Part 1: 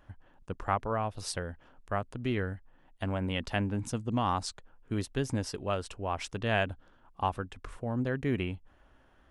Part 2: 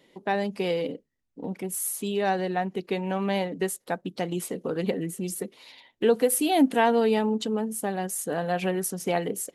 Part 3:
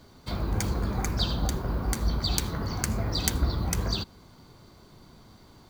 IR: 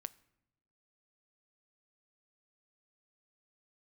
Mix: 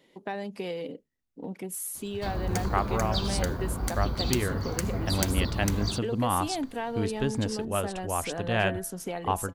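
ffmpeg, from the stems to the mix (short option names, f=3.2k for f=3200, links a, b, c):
-filter_complex "[0:a]bandreject=f=168.2:t=h:w=4,bandreject=f=336.4:t=h:w=4,bandreject=f=504.6:t=h:w=4,bandreject=f=672.8:t=h:w=4,bandreject=f=841:t=h:w=4,bandreject=f=1.0092k:t=h:w=4,bandreject=f=1.1774k:t=h:w=4,bandreject=f=1.3456k:t=h:w=4,bandreject=f=1.5138k:t=h:w=4,bandreject=f=1.682k:t=h:w=4,bandreject=f=1.8502k:t=h:w=4,adelay=2050,volume=2.5dB[a];[1:a]acompressor=threshold=-30dB:ratio=3,volume=-2.5dB[b];[2:a]adelay=1950,volume=-2.5dB[c];[a][b][c]amix=inputs=3:normalize=0"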